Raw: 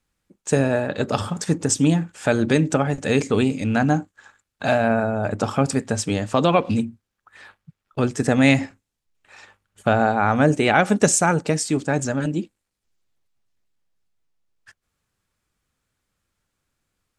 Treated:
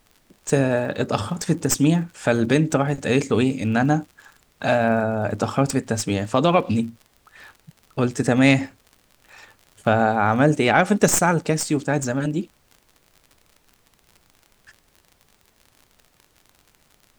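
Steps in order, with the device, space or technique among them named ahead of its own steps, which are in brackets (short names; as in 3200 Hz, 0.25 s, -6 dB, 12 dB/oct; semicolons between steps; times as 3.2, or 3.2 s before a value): record under a worn stylus (tracing distortion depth 0.034 ms; crackle 48/s -36 dBFS; pink noise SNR 39 dB)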